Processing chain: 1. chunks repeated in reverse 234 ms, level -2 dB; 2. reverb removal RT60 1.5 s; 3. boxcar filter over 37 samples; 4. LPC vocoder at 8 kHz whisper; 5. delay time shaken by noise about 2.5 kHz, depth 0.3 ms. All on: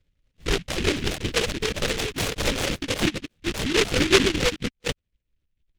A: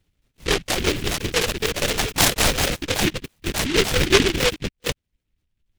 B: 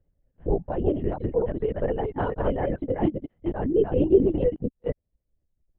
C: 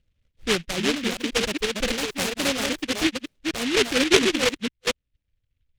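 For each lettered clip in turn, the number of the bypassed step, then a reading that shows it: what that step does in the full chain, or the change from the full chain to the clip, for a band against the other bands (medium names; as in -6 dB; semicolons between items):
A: 3, 8 kHz band +3.5 dB; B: 5, 2 kHz band -18.5 dB; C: 4, momentary loudness spread change -2 LU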